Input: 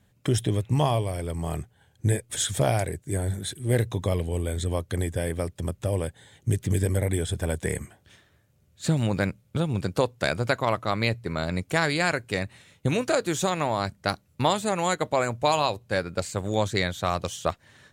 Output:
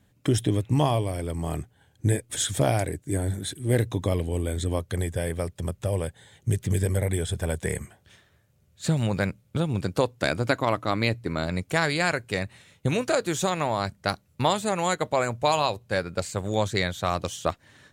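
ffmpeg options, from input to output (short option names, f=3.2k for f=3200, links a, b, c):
-af "asetnsamples=n=441:p=0,asendcmd='4.79 equalizer g -5;9.3 equalizer g 1.5;10.17 equalizer g 8;11.46 equalizer g -2;17.11 equalizer g 5',equalizer=f=290:t=o:w=0.31:g=6.5"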